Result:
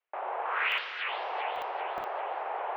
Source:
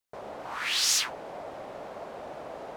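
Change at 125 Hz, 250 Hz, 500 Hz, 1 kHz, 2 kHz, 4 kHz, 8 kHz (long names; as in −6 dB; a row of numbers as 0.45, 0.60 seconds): below −10 dB, −8.5 dB, +1.5 dB, +8.0 dB, +3.5 dB, −9.5 dB, below −35 dB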